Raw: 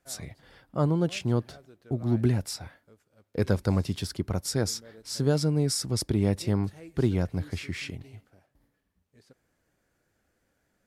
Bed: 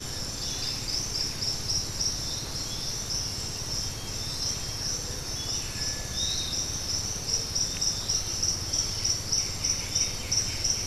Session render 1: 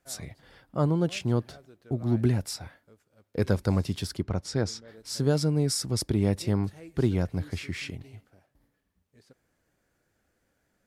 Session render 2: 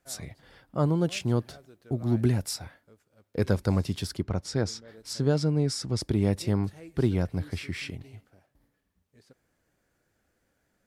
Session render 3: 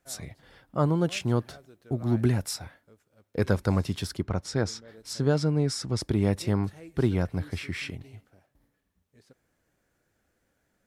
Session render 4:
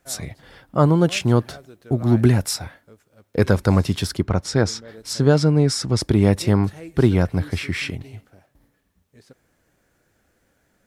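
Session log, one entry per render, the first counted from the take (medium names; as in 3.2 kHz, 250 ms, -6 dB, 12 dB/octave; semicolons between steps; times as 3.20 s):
4.23–4.88 s: distance through air 88 m
0.86–2.65 s: treble shelf 6.3 kHz +4.5 dB; 5.13–6.03 s: distance through air 60 m; 6.95–7.92 s: band-stop 6.7 kHz
band-stop 4.7 kHz, Q 24; dynamic bell 1.3 kHz, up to +4 dB, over -45 dBFS, Q 0.82
trim +8.5 dB; peak limiter -3 dBFS, peak gain reduction 2 dB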